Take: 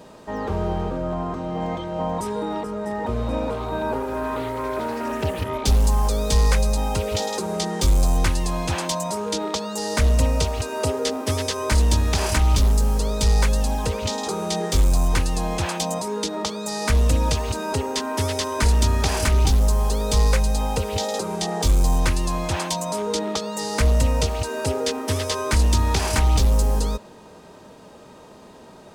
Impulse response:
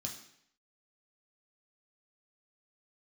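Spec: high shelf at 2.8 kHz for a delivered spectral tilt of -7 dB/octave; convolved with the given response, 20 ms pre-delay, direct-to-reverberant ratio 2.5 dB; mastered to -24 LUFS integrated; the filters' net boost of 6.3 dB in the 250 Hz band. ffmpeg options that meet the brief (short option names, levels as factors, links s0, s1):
-filter_complex "[0:a]equalizer=f=250:t=o:g=8,highshelf=f=2800:g=-8,asplit=2[s0][s1];[1:a]atrim=start_sample=2205,adelay=20[s2];[s1][s2]afir=irnorm=-1:irlink=0,volume=0.944[s3];[s0][s3]amix=inputs=2:normalize=0,volume=0.531"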